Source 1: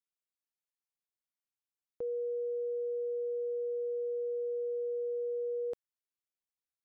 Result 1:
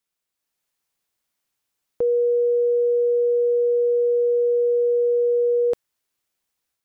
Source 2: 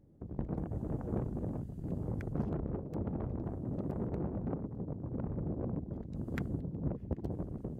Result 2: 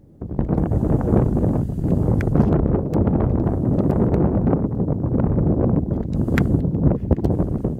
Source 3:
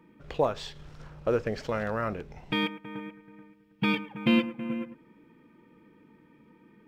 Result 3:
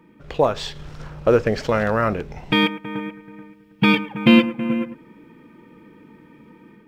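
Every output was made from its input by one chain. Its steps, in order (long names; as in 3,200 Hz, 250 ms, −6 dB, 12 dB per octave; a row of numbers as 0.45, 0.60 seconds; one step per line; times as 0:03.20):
automatic gain control gain up to 5 dB
loudness normalisation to −20 LKFS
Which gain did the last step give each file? +11.0, +14.0, +5.5 decibels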